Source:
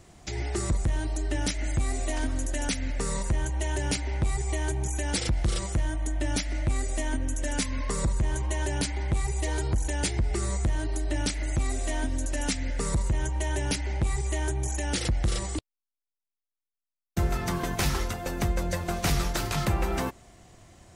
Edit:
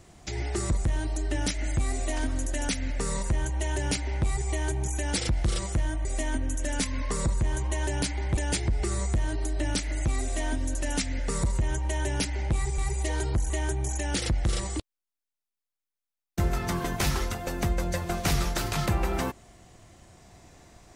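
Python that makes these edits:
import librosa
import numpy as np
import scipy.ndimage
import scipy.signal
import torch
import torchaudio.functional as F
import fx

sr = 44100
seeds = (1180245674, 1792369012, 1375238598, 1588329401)

y = fx.edit(x, sr, fx.cut(start_s=6.05, length_s=0.79),
    fx.move(start_s=9.16, length_s=0.72, to_s=14.29), tone=tone)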